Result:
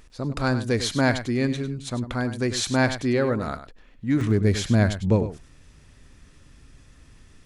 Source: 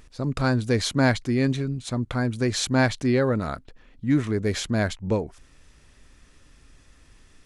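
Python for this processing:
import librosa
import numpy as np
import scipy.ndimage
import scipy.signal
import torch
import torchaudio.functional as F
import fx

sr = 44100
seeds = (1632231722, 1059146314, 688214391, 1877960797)

y = fx.peak_eq(x, sr, hz=120.0, db=fx.steps((0.0, -2.5), (4.21, 7.0)), octaves=2.3)
y = y + 10.0 ** (-11.5 / 20.0) * np.pad(y, (int(100 * sr / 1000.0), 0))[:len(y)]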